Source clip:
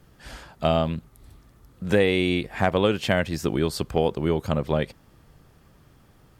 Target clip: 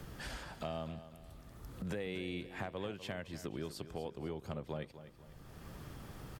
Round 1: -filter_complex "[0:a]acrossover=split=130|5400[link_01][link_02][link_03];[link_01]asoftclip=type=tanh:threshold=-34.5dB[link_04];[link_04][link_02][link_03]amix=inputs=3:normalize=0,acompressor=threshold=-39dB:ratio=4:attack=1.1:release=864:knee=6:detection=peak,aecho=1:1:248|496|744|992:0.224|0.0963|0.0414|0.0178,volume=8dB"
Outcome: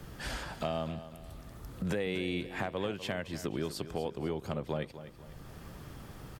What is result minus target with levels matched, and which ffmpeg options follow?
soft clipping: distortion +14 dB; downward compressor: peak gain reduction −6.5 dB
-filter_complex "[0:a]acrossover=split=130|5400[link_01][link_02][link_03];[link_01]asoftclip=type=tanh:threshold=-24dB[link_04];[link_04][link_02][link_03]amix=inputs=3:normalize=0,acompressor=threshold=-48dB:ratio=4:attack=1.1:release=864:knee=6:detection=peak,aecho=1:1:248|496|744|992:0.224|0.0963|0.0414|0.0178,volume=8dB"

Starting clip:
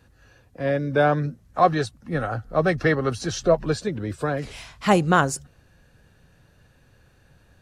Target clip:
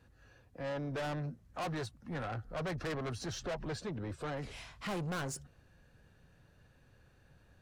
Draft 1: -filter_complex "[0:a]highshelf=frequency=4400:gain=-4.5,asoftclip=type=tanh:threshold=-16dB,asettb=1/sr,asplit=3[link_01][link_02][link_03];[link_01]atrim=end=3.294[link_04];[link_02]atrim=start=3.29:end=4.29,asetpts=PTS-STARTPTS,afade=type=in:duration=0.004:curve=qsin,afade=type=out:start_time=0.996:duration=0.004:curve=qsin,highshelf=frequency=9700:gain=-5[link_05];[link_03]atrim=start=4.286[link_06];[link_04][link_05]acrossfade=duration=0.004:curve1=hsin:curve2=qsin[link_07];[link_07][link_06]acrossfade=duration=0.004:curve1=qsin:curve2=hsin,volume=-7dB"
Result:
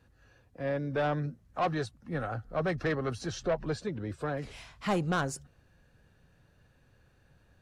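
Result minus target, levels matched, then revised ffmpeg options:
soft clipping: distortion −8 dB
-filter_complex "[0:a]highshelf=frequency=4400:gain=-4.5,asoftclip=type=tanh:threshold=-28dB,asettb=1/sr,asplit=3[link_01][link_02][link_03];[link_01]atrim=end=3.294[link_04];[link_02]atrim=start=3.29:end=4.29,asetpts=PTS-STARTPTS,afade=type=in:duration=0.004:curve=qsin,afade=type=out:start_time=0.996:duration=0.004:curve=qsin,highshelf=frequency=9700:gain=-5[link_05];[link_03]atrim=start=4.286[link_06];[link_04][link_05]acrossfade=duration=0.004:curve1=hsin:curve2=qsin[link_07];[link_07][link_06]acrossfade=duration=0.004:curve1=qsin:curve2=hsin,volume=-7dB"

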